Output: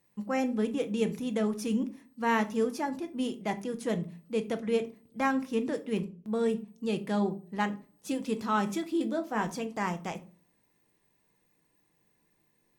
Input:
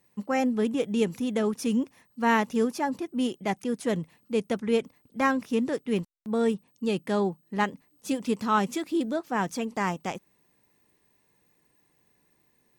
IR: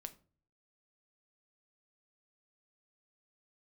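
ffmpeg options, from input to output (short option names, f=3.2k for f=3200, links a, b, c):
-filter_complex "[0:a]asettb=1/sr,asplit=3[a][b][c];[a]atrim=end=8.994[d];[b]atrim=start=8.99:end=9.47,asetpts=PTS-STARTPTS,afade=t=in:d=0.004:c=qsin,afade=t=out:st=0.476:d=0.004:c=qsin,asplit=2[e][f];[f]adelay=18,volume=-7.5dB[g];[e][g]amix=inputs=2:normalize=0,atrim=end_sample=21168[h];[c]atrim=start=9.466[i];[d][h]acrossfade=d=0.004:c1=hsin:c2=qsin[j];[j][i]acrossfade=d=0.004:c1=qsin:c2=hsin[k];[1:a]atrim=start_sample=2205[l];[k][l]afir=irnorm=-1:irlink=0,volume=1dB"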